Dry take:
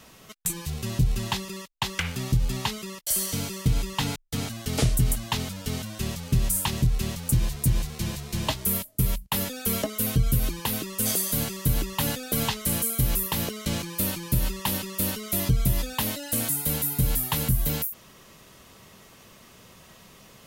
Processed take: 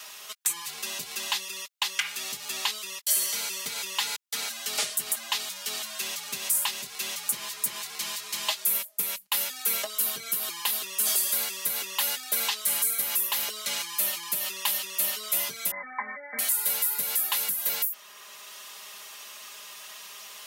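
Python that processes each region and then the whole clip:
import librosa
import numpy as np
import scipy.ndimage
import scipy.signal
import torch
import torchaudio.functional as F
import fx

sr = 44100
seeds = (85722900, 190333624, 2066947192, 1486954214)

y = fx.chain(x, sr, fx.brickwall_lowpass(high_hz=2300.0),
    fx.comb(ms=3.9, depth=0.96), at=(15.71, 16.39))
y = scipy.signal.sosfilt(scipy.signal.butter(2, 1000.0, 'highpass', fs=sr, output='sos'), y)
y = y + 0.86 * np.pad(y, (int(4.9 * sr / 1000.0), 0))[:len(y)]
y = fx.band_squash(y, sr, depth_pct=40)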